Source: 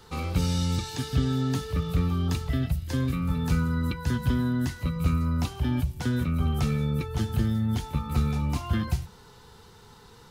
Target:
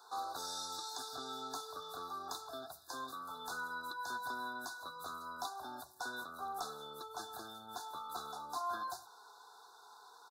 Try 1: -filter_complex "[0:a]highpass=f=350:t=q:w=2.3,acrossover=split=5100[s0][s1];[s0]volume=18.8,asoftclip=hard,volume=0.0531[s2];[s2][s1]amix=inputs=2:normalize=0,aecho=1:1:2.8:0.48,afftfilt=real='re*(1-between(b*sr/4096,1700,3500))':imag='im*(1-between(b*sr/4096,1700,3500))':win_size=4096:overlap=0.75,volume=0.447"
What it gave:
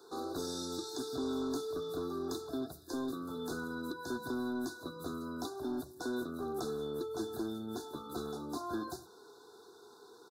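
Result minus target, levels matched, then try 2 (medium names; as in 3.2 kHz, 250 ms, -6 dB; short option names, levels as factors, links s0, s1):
250 Hz band +14.5 dB
-filter_complex "[0:a]highpass=f=830:t=q:w=2.3,acrossover=split=5100[s0][s1];[s0]volume=18.8,asoftclip=hard,volume=0.0531[s2];[s2][s1]amix=inputs=2:normalize=0,aecho=1:1:2.8:0.48,afftfilt=real='re*(1-between(b*sr/4096,1700,3500))':imag='im*(1-between(b*sr/4096,1700,3500))':win_size=4096:overlap=0.75,volume=0.447"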